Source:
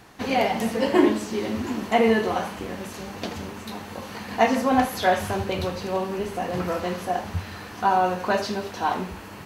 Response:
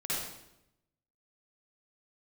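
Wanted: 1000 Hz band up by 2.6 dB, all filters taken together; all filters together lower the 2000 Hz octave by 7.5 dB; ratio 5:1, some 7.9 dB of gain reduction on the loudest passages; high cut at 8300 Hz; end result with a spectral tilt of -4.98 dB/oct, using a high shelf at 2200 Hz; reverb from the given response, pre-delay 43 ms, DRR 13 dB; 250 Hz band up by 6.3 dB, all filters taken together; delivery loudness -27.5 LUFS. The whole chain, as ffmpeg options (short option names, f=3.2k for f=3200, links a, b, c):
-filter_complex "[0:a]lowpass=8.3k,equalizer=f=250:t=o:g=7.5,equalizer=f=1k:t=o:g=6,equalizer=f=2k:t=o:g=-8,highshelf=f=2.2k:g=-8,acompressor=threshold=-17dB:ratio=5,asplit=2[a][b];[1:a]atrim=start_sample=2205,adelay=43[c];[b][c]afir=irnorm=-1:irlink=0,volume=-18.5dB[d];[a][d]amix=inputs=2:normalize=0,volume=-3dB"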